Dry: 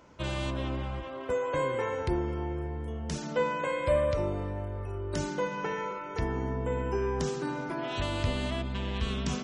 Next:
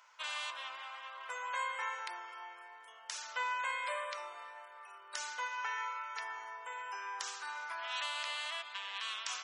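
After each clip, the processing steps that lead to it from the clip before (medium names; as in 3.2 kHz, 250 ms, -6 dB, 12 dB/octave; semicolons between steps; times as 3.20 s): high-pass 1 kHz 24 dB/octave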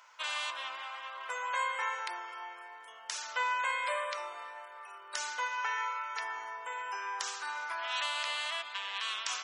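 bass shelf 350 Hz +4 dB; trim +4 dB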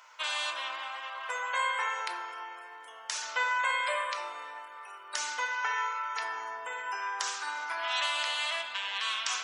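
simulated room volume 270 m³, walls mixed, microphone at 0.52 m; trim +3 dB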